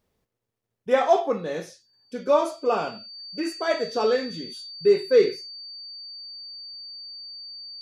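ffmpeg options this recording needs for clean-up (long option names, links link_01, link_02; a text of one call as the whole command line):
ffmpeg -i in.wav -af "bandreject=frequency=4600:width=30" out.wav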